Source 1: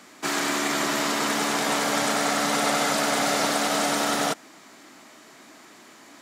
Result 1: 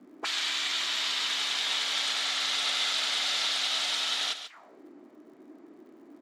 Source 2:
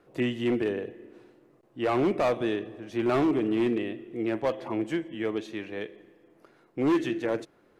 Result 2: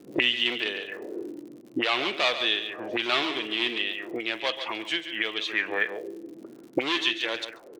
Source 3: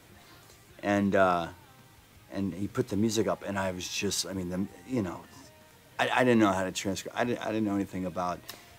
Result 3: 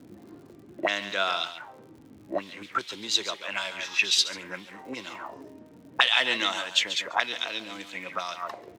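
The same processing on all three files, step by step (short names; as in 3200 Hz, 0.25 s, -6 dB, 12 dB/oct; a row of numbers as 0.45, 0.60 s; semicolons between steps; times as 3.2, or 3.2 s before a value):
echo 0.14 s -10.5 dB; auto-wah 230–3500 Hz, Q 2.9, up, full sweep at -27.5 dBFS; crackle 89/s -62 dBFS; match loudness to -27 LUFS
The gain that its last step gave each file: +5.5, +20.0, +16.0 dB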